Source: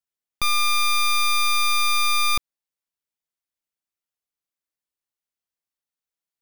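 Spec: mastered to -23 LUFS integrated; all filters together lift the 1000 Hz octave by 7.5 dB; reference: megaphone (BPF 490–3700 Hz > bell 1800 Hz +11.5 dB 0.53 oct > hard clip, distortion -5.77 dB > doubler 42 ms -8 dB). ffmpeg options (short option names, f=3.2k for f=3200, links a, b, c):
-filter_complex "[0:a]highpass=490,lowpass=3.7k,equalizer=f=1k:t=o:g=7,equalizer=f=1.8k:t=o:w=0.53:g=11.5,asoftclip=type=hard:threshold=-25.5dB,asplit=2[a][b];[b]adelay=42,volume=-8dB[c];[a][c]amix=inputs=2:normalize=0,volume=4dB"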